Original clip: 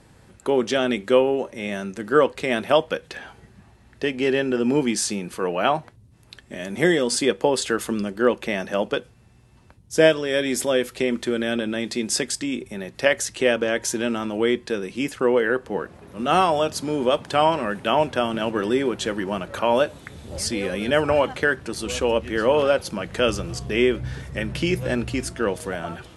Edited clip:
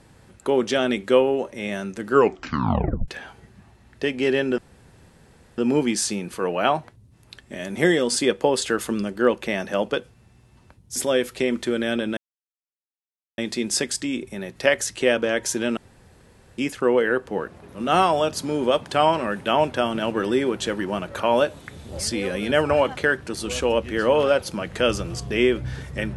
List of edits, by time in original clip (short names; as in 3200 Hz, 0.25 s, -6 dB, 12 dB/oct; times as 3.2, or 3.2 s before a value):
2.1 tape stop 0.98 s
4.58 insert room tone 1.00 s
9.96–10.56 cut
11.77 insert silence 1.21 s
14.16–14.97 room tone